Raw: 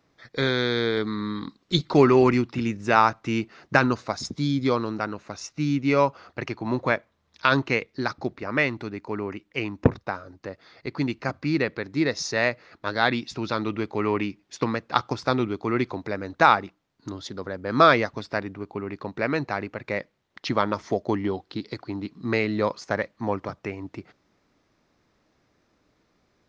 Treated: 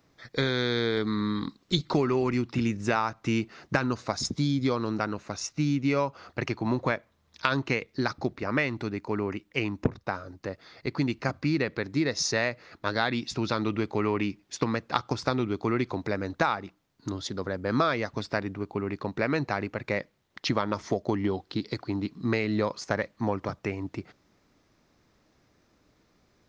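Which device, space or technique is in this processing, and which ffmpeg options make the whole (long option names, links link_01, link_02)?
ASMR close-microphone chain: -af "lowshelf=frequency=210:gain=4,acompressor=threshold=-22dB:ratio=6,highshelf=frequency=6700:gain=7.5"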